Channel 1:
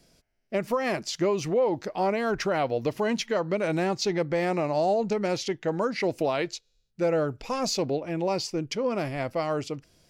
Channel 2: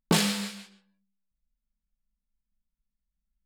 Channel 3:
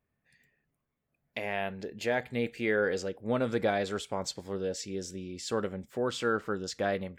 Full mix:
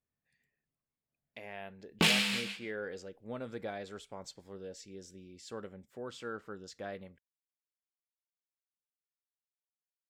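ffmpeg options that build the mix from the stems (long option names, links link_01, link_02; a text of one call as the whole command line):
ffmpeg -i stem1.wav -i stem2.wav -i stem3.wav -filter_complex "[1:a]equalizer=frequency=2600:width_type=o:width=1.1:gain=13.5,acompressor=threshold=-30dB:ratio=1.5,adelay=1900,volume=-2dB[link_01];[2:a]volume=-12dB[link_02];[link_01][link_02]amix=inputs=2:normalize=0" out.wav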